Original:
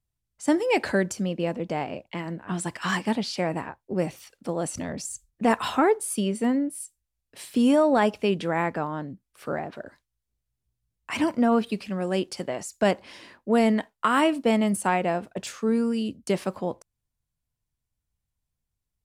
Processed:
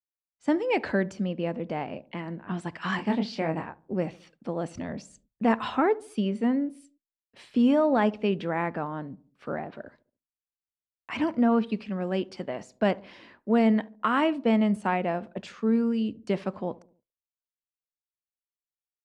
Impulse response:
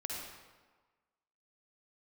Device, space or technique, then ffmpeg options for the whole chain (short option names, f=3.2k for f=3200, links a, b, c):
hearing-loss simulation: -filter_complex "[0:a]lowpass=3.5k,agate=range=-33dB:threshold=-52dB:ratio=3:detection=peak,equalizer=f=220:w=4.5:g=4,asettb=1/sr,asplit=3[a][b][c];[a]atrim=end=2.964[d];[b]atrim=start=2.96:end=3.66,asetpts=PTS-STARTPTS,afade=t=in:d=0.004:c=qsin,afade=t=out:st=0.696:d=0.004:c=qsin,asplit=2[e][f];[f]adelay=25,volume=-5dB[g];[e][g]amix=inputs=2:normalize=0,atrim=end_sample=30870[h];[c]atrim=start=3.656[i];[d][h]acrossfade=d=0.004:c1=hsin:c2=qsin[j];[j][i]acrossfade=d=0.004:c1=qsin:c2=hsin,asplit=2[k][l];[l]adelay=71,lowpass=f=850:p=1,volume=-19.5dB,asplit=2[m][n];[n]adelay=71,lowpass=f=850:p=1,volume=0.52,asplit=2[o][p];[p]adelay=71,lowpass=f=850:p=1,volume=0.52,asplit=2[q][r];[r]adelay=71,lowpass=f=850:p=1,volume=0.52[s];[k][m][o][q][s]amix=inputs=5:normalize=0,volume=-3dB"